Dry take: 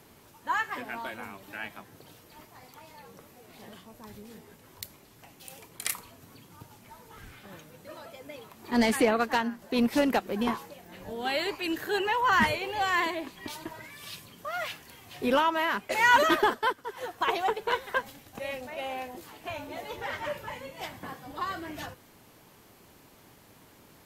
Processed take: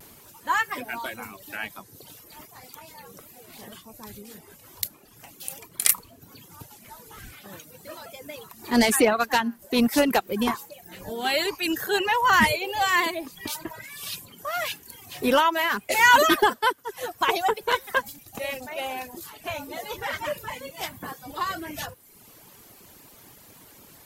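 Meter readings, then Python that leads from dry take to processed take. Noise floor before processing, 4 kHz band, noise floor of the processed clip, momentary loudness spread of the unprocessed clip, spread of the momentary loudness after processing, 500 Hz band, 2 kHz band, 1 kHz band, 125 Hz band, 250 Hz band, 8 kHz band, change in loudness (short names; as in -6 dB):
-57 dBFS, +6.5 dB, -52 dBFS, 22 LU, 23 LU, +4.0 dB, +5.0 dB, +4.0 dB, +3.0 dB, +3.5 dB, +11.0 dB, +4.5 dB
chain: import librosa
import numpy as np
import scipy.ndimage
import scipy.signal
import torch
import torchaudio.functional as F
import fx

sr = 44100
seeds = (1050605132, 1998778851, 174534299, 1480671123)

y = fx.dereverb_blind(x, sr, rt60_s=0.83)
y = fx.high_shelf(y, sr, hz=5500.0, db=10.5)
y = fx.vibrato(y, sr, rate_hz=0.4, depth_cents=18.0)
y = y * 10.0 ** (4.5 / 20.0)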